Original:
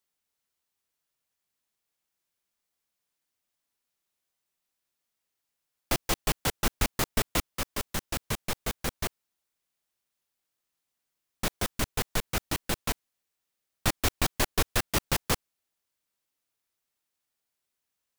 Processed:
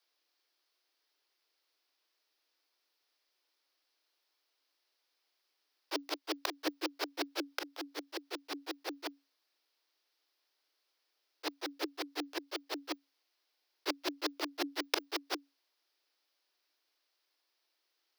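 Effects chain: auto swell 0.169 s; frequency shift +280 Hz; resonant high shelf 6100 Hz -7 dB, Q 3; gain +5 dB

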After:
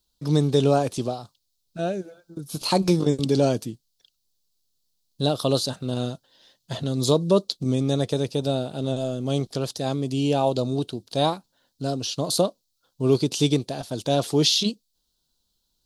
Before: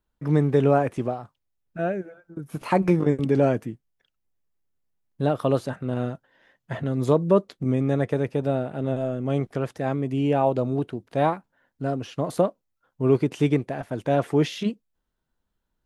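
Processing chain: resonant high shelf 2900 Hz +13.5 dB, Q 3

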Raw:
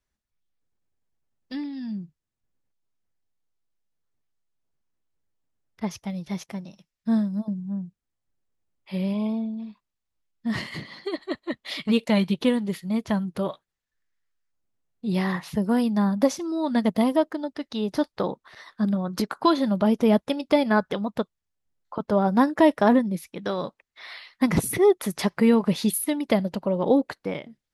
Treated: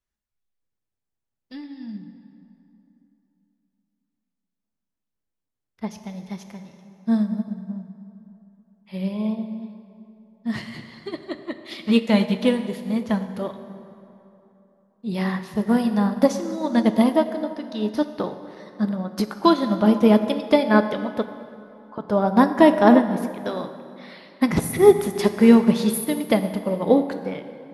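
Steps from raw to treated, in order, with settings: plate-style reverb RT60 3.2 s, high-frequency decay 0.6×, DRR 5 dB; upward expander 1.5:1, over -33 dBFS; gain +5 dB

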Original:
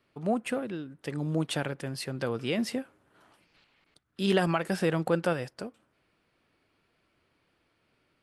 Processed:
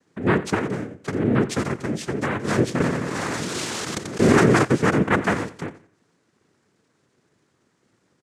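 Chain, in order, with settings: low shelf 460 Hz +10 dB; noise vocoder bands 3; on a send: feedback echo 88 ms, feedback 28%, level -16 dB; 2.8–4.65 on the sum: fast leveller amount 70%; gain +1.5 dB

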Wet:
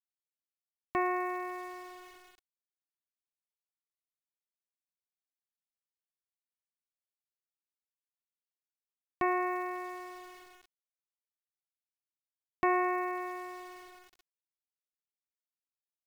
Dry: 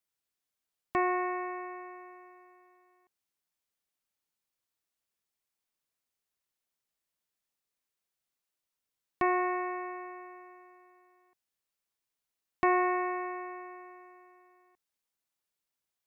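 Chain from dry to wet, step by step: sample gate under -48.5 dBFS; gain -2 dB

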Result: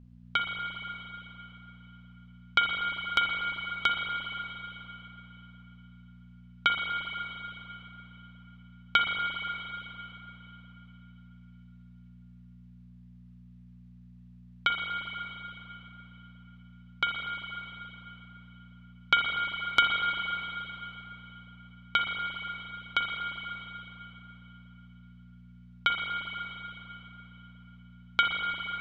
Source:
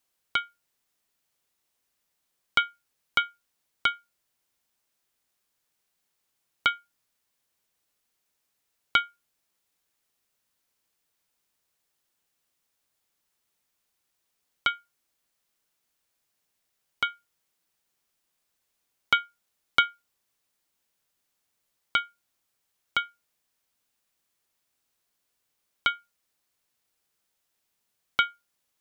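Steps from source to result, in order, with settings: buzz 60 Hz, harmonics 4, -51 dBFS -4 dB/oct; spring tank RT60 3.6 s, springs 39/43/58 ms, chirp 25 ms, DRR 0.5 dB; low-pass opened by the level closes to 2900 Hz, open at -29 dBFS; gain -1.5 dB

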